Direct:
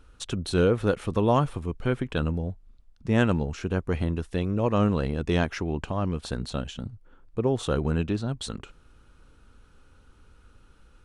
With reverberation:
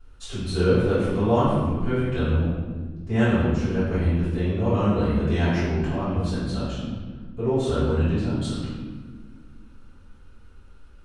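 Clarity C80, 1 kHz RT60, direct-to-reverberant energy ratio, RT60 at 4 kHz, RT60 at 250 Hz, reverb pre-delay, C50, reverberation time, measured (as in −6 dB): 1.0 dB, 1.3 s, −15.5 dB, 1.0 s, 2.8 s, 3 ms, −2.0 dB, 1.5 s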